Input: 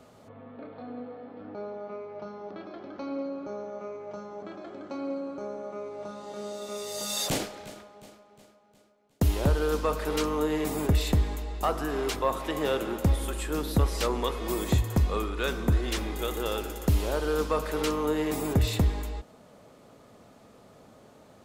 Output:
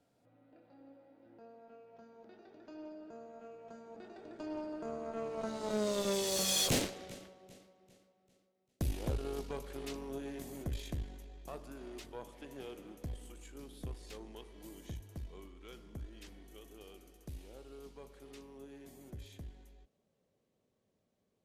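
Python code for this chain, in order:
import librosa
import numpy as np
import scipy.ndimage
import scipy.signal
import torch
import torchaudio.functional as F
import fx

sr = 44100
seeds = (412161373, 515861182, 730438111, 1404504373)

y = fx.doppler_pass(x, sr, speed_mps=36, closest_m=17.0, pass_at_s=5.91)
y = fx.peak_eq(y, sr, hz=1100.0, db=-8.0, octaves=1.0)
y = fx.cheby_harmonics(y, sr, harmonics=(8,), levels_db=(-20,), full_scale_db=-23.5)
y = F.gain(torch.from_numpy(y), 4.0).numpy()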